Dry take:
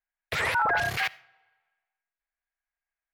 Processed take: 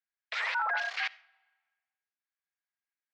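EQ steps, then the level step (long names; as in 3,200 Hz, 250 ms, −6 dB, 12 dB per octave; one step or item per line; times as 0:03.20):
Bessel high-pass filter 1,000 Hz, order 8
low-pass filter 5,600 Hz 24 dB per octave
−3.5 dB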